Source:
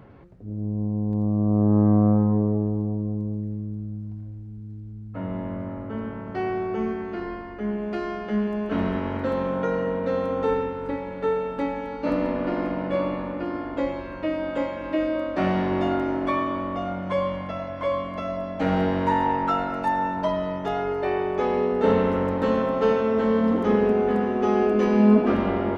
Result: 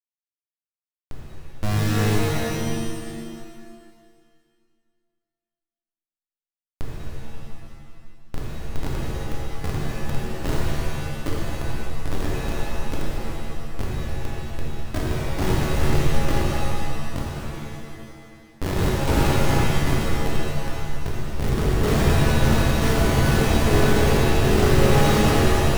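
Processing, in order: Schmitt trigger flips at -16.5 dBFS; pitch-shifted reverb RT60 2 s, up +7 st, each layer -2 dB, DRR -4.5 dB

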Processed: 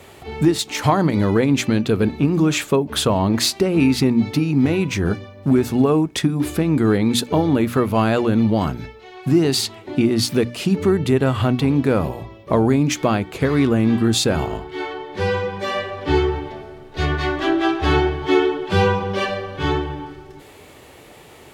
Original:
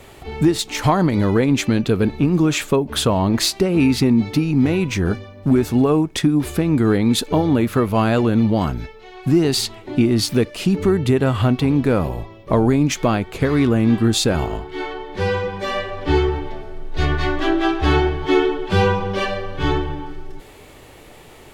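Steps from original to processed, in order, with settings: high-pass 66 Hz; hum notches 60/120/180/240/300 Hz

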